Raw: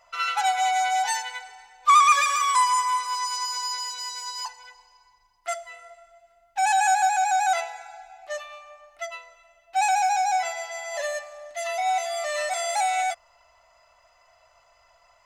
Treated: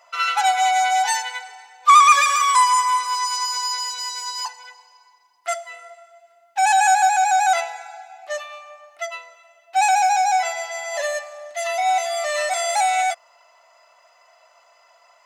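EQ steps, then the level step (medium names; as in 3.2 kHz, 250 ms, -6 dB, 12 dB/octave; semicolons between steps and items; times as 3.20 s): high-pass 340 Hz 12 dB/octave; +5.0 dB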